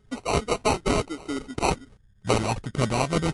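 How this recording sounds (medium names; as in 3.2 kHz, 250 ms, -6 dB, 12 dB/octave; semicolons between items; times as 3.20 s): a buzz of ramps at a fixed pitch in blocks of 8 samples; phasing stages 6, 1.1 Hz, lowest notch 510–1300 Hz; aliases and images of a low sample rate 1.7 kHz, jitter 0%; MP3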